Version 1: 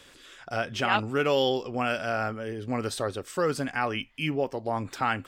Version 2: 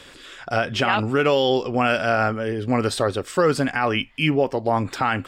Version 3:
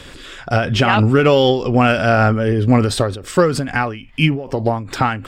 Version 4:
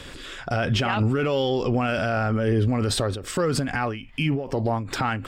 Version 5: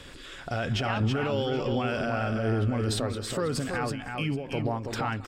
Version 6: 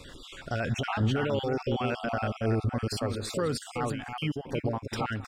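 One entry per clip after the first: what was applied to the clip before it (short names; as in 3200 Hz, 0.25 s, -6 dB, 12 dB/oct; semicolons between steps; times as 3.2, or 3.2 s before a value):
high shelf 10000 Hz -9 dB; notch 6100 Hz, Q 13; limiter -18 dBFS, peak gain reduction 8.5 dB; gain +9 dB
low shelf 190 Hz +11.5 dB; in parallel at -12 dB: soft clip -18 dBFS, distortion -9 dB; on the sum: ending taper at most 100 dB/s; gain +3.5 dB
limiter -12 dBFS, peak gain reduction 10.5 dB; gain -2.5 dB
tapped delay 0.191/0.312/0.327/0.774 s -20/-17/-5.5/-19.5 dB; gain -6 dB
random spectral dropouts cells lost 29%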